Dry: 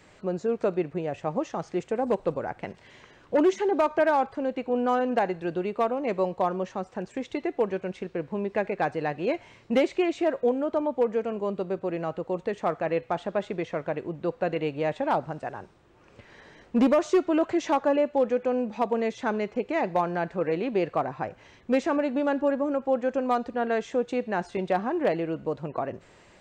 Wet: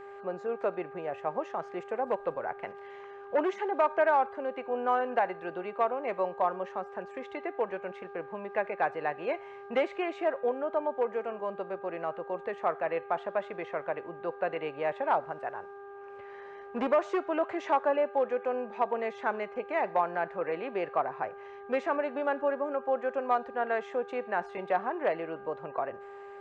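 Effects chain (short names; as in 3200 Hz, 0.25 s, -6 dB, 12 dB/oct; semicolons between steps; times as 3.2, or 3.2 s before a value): three-band isolator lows -15 dB, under 520 Hz, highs -17 dB, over 2700 Hz; buzz 400 Hz, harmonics 4, -46 dBFS -6 dB/oct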